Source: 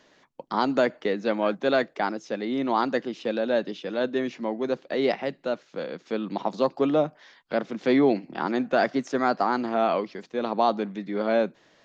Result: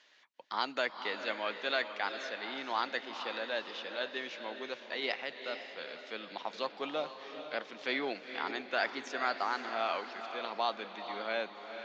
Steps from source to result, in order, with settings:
resonant band-pass 3,000 Hz, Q 0.93
feedback delay with all-pass diffusion 460 ms, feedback 44%, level −8.5 dB

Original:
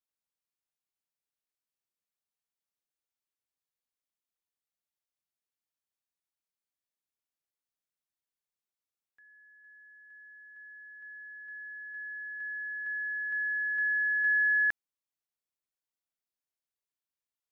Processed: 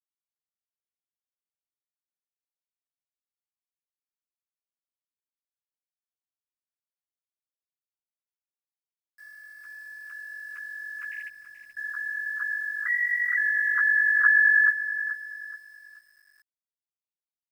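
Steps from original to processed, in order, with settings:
three sine waves on the formant tracks
0:12.86–0:13.37: frequency shifter +250 Hz
bit reduction 11 bits
0:11.28–0:11.77: Gaussian smoothing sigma 21 samples
double-tracking delay 14 ms −7 dB
repeating echo 213 ms, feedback 51%, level −23.5 dB
feedback echo at a low word length 429 ms, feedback 35%, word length 10 bits, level −11 dB
level +7 dB

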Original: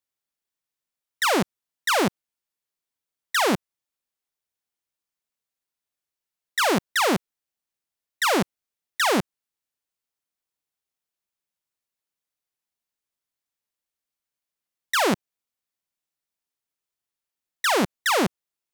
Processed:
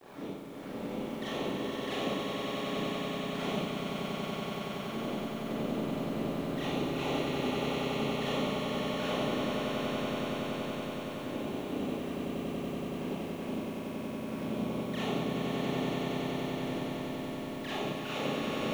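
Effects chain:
pitch shifter gated in a rhythm −4.5 semitones, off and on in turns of 113 ms
wind on the microphone 300 Hz −34 dBFS
low-shelf EQ 73 Hz −3 dB
notch filter 960 Hz, Q 10
reversed playback
downward compressor 20 to 1, threshold −30 dBFS, peak gain reduction 13.5 dB
reversed playback
centre clipping without the shift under −36.5 dBFS
flanger swept by the level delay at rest 3.3 ms, full sweep at −33.5 dBFS
three-way crossover with the lows and the highs turned down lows −23 dB, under 150 Hz, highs −16 dB, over 4,500 Hz
background noise white −68 dBFS
echo that builds up and dies away 94 ms, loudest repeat 8, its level −6 dB
four-comb reverb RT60 0.94 s, combs from 28 ms, DRR −8 dB
level −7 dB

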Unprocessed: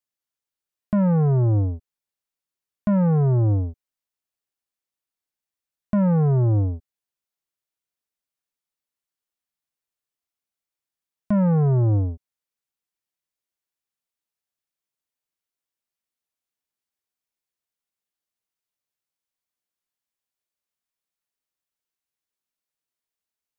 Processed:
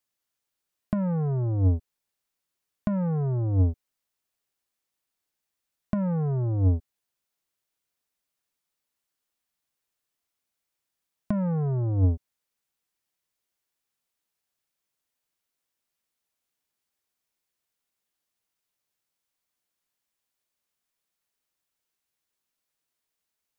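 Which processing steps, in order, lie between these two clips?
compressor whose output falls as the input rises −22 dBFS, ratio −0.5

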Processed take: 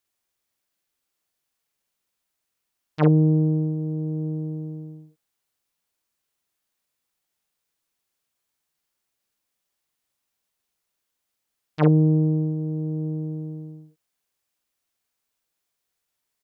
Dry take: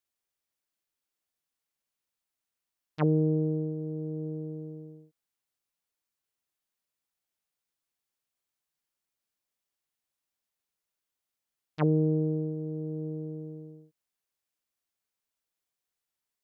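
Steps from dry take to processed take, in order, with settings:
double-tracking delay 46 ms −6 dB
level +6.5 dB

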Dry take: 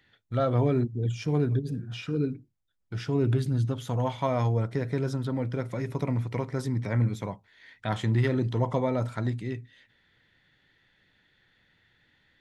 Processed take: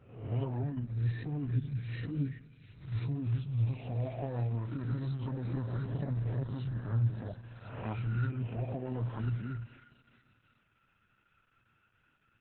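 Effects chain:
peak hold with a rise ahead of every peak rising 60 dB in 0.73 s
on a send: echo through a band-pass that steps 344 ms, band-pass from 2,500 Hz, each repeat 0.7 octaves, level −7 dB
on the sum: flanger 1.5 Hz, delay 0.9 ms, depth 9.1 ms, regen +41%
spring reverb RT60 2.6 s, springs 34/39 ms, chirp 60 ms, DRR 18 dB
formants moved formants −5 semitones
speech leveller within 4 dB 0.5 s
parametric band 110 Hz +6 dB 0.78 octaves
level −6.5 dB
Opus 8 kbit/s 48,000 Hz

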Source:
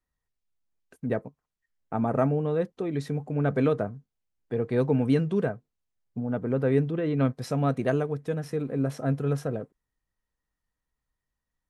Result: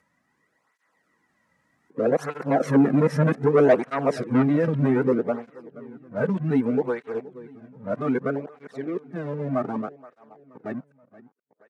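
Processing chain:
played backwards from end to start
source passing by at 0:03.12, 12 m/s, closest 7.9 metres
in parallel at +1 dB: downward compressor, threshold −38 dBFS, peak gain reduction 14.5 dB
on the sum: leveller curve on the samples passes 2
high-pass filter 170 Hz 12 dB per octave
high shelf with overshoot 2,500 Hz −7 dB, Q 1.5
repeating echo 477 ms, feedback 43%, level −19 dB
upward compression, threshold −52 dBFS
low-pass filter 8,400 Hz 12 dB per octave
through-zero flanger with one copy inverted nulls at 0.64 Hz, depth 2.9 ms
level +7 dB

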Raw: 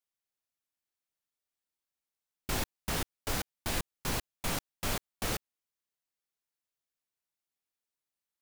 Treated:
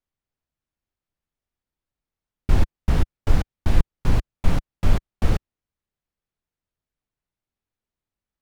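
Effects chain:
RIAA equalisation playback
level +4 dB

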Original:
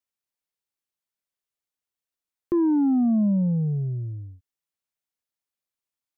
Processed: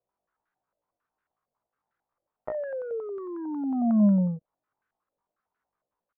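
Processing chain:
dynamic equaliser 410 Hz, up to −4 dB, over −36 dBFS, Q 3.4
compressor whose output falls as the input rises −30 dBFS, ratio −0.5
pitch shifter +10 semitones
low-pass on a step sequencer 11 Hz 600–1,500 Hz
level +4.5 dB

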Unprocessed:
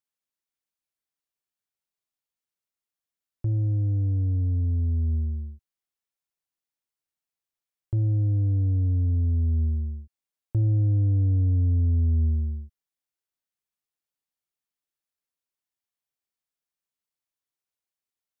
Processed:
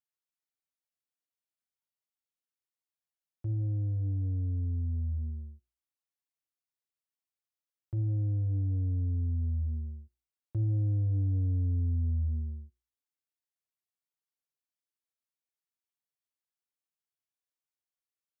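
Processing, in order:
high-pass filter 65 Hz
mains-hum notches 60/120/180/240/300/360/420/480/540 Hz
notch comb filter 200 Hz
level −6 dB

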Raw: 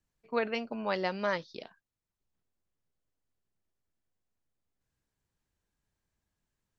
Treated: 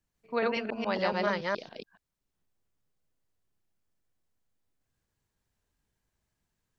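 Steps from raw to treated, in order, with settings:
delay that plays each chunk backwards 141 ms, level 0 dB

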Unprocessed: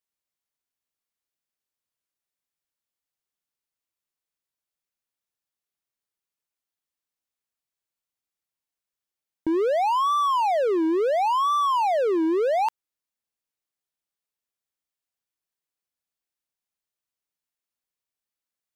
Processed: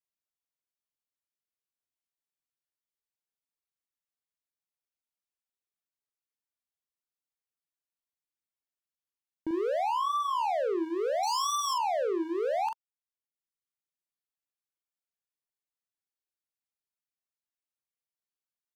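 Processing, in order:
reverb reduction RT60 0.89 s
0:11.23–0:11.74: high shelf with overshoot 3,400 Hz +13.5 dB, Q 3
double-tracking delay 42 ms −5 dB
level −8 dB

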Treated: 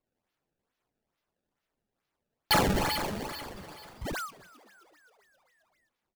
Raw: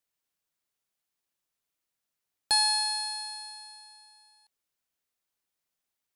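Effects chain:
sound drawn into the spectrogram fall, 0:04.01–0:04.31, 1,100–2,200 Hz −35 dBFS
sample-and-hold swept by an LFO 24×, swing 160% 2.3 Hz
echo with shifted repeats 264 ms, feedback 64%, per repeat +97 Hz, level −20.5 dB
flanger 1.2 Hz, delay 2.7 ms, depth 4.2 ms, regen +77%
every ending faded ahead of time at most 200 dB per second
level +5 dB

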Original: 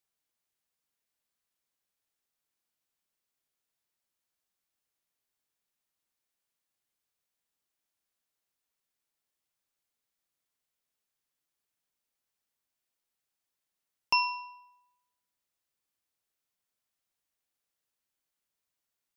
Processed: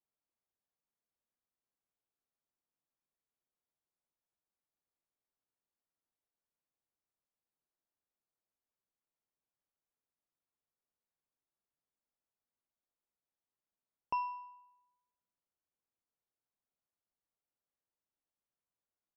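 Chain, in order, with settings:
low-pass filter 1,100 Hz 12 dB per octave
mains-hum notches 50/100 Hz
level −3.5 dB

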